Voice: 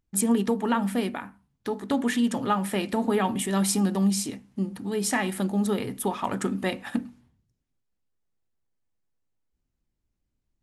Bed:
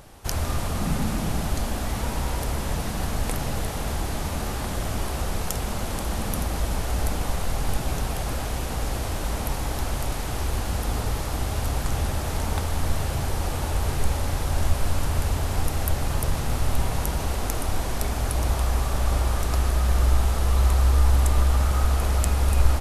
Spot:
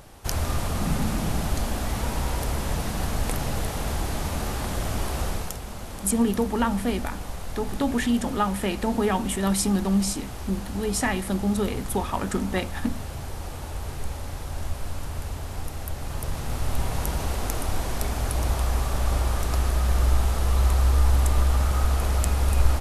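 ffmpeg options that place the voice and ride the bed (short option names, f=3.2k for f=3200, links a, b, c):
-filter_complex "[0:a]adelay=5900,volume=0.5dB[a];[1:a]volume=7dB,afade=t=out:st=5.26:d=0.33:silence=0.398107,afade=t=in:st=15.93:d=1.18:silence=0.446684[b];[a][b]amix=inputs=2:normalize=0"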